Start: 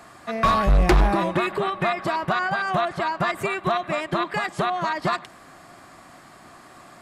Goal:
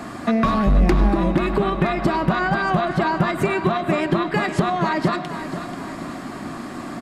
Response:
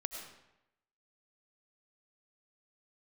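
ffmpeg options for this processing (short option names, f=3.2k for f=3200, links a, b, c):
-filter_complex "[0:a]equalizer=f=250:t=o:w=1.1:g=12.5,acompressor=threshold=-28dB:ratio=6,aecho=1:1:485|970|1455|1940|2425|2910:0.266|0.138|0.0719|0.0374|0.0195|0.0101,asplit=2[a][b];[1:a]atrim=start_sample=2205,lowpass=7.6k,lowshelf=f=190:g=11[c];[b][c]afir=irnorm=-1:irlink=0,volume=-6dB[d];[a][d]amix=inputs=2:normalize=0,volume=7dB"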